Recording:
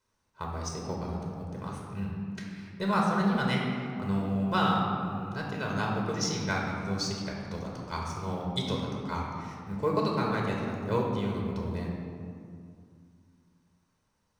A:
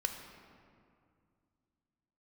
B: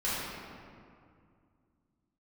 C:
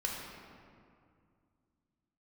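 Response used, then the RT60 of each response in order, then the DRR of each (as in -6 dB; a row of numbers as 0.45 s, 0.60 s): C; 2.3 s, 2.3 s, 2.3 s; 4.5 dB, -10.5 dB, -2.0 dB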